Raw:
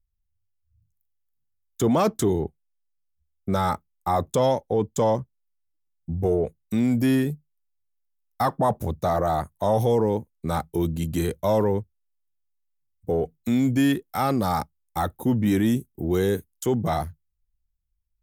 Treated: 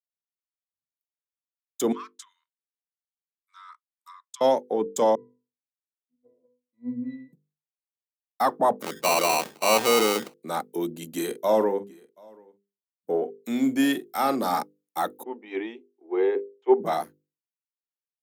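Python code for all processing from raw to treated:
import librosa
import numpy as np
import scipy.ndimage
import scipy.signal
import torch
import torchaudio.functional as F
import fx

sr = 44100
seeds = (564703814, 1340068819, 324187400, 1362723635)

y = fx.chain(x, sr, fx.env_lowpass_down(base_hz=2200.0, full_db=-18.0),
    fx.brickwall_highpass(low_hz=940.0),
    fx.peak_eq(hz=1500.0, db=-11.0, octaves=2.6), at=(1.92, 4.41))
y = fx.chain(y, sr, fx.octave_resonator(note='B', decay_s=0.5),
    fx.band_widen(depth_pct=70), at=(5.15, 7.33))
y = fx.chain(y, sr, fx.sample_hold(seeds[0], rate_hz=1700.0, jitter_pct=0),
    fx.sustainer(db_per_s=83.0), at=(8.82, 10.34))
y = fx.chain(y, sr, fx.doubler(ms=45.0, db=-12.5),
    fx.echo_single(ms=733, db=-20.0), at=(11.09, 14.59))
y = fx.chain(y, sr, fx.cabinet(low_hz=350.0, low_slope=24, high_hz=2700.0, hz=(390.0, 570.0, 850.0, 1500.0, 2300.0), db=(5, -7, 7, -8, 4)),
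    fx.band_widen(depth_pct=100), at=(15.23, 16.8))
y = scipy.signal.sosfilt(scipy.signal.butter(4, 240.0, 'highpass', fs=sr, output='sos'), y)
y = fx.hum_notches(y, sr, base_hz=50, count=10)
y = fx.band_widen(y, sr, depth_pct=40)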